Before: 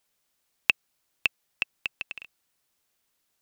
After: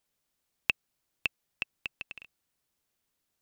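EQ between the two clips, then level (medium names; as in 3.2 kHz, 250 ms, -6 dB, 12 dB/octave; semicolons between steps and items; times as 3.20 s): bass shelf 390 Hz +7 dB; -6.0 dB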